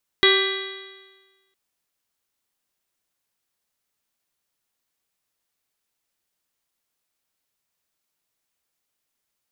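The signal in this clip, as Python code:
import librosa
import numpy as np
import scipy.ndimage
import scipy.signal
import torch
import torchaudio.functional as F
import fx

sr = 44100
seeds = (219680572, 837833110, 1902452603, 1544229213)

y = fx.additive_stiff(sr, length_s=1.31, hz=384.0, level_db=-16.5, upper_db=(-18.0, -7.5, -9, 0, -12, -17.0, -1.0, -2, -17), decay_s=1.32, stiffness=0.0028)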